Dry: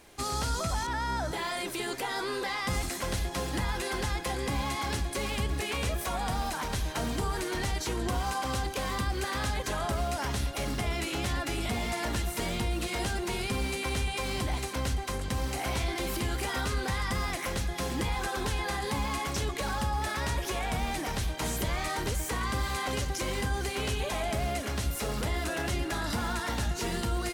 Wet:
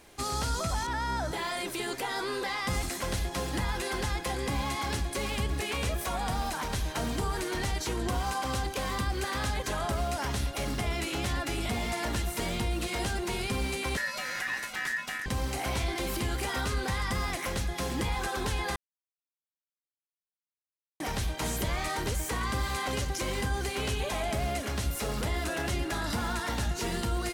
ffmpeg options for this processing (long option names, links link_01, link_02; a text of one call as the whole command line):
ffmpeg -i in.wav -filter_complex "[0:a]asettb=1/sr,asplit=3[link_01][link_02][link_03];[link_01]atrim=end=13.974[link_04];[link_02]atrim=start=13.97:end=15.26,asetpts=PTS-STARTPTS,afade=type=in:duration=0.004:curve=qsin,afade=type=out:start_time=1.286:duration=0.004:curve=qsin,aeval=exprs='val(0)*sin(2*PI*1800*n/s)':channel_layout=same[link_05];[link_03]atrim=start=15.256[link_06];[link_04][link_05]acrossfade=duration=0.004:curve1=hsin:curve2=qsin[link_07];[link_07][link_06]acrossfade=duration=0.004:curve1=qsin:curve2=hsin,asplit=3[link_08][link_09][link_10];[link_08]atrim=end=18.76,asetpts=PTS-STARTPTS,afade=type=out:start_time=18.756:duration=0.004:curve=hsin[link_11];[link_09]atrim=start=18.76:end=21,asetpts=PTS-STARTPTS,volume=0[link_12];[link_10]atrim=start=21,asetpts=PTS-STARTPTS,afade=type=in:duration=0.004:curve=hsin[link_13];[link_11][link_12][link_13]concat=n=3:v=0:a=1" out.wav